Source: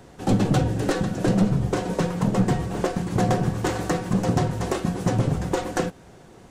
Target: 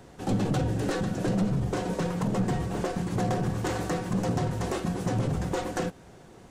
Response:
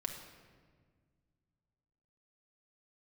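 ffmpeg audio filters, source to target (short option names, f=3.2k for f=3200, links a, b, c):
-af "alimiter=limit=-17.5dB:level=0:latency=1:release=17,volume=-2.5dB"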